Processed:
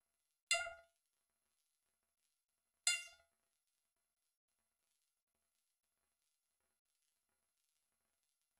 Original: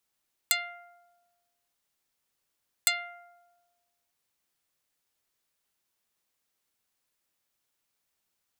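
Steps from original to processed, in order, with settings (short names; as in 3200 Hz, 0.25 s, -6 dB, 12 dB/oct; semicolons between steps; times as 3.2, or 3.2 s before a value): low shelf 150 Hz +11 dB; de-hum 61.98 Hz, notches 11; LFO high-pass sine 8.3 Hz 260–2900 Hz; crossover distortion -44.5 dBFS; crackle 33/s -56 dBFS; harmonic tremolo 1.5 Hz, depth 100%, crossover 2300 Hz; resonator 75 Hz, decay 0.28 s, harmonics odd, mix 90%; gain +6.5 dB; MP2 128 kbps 44100 Hz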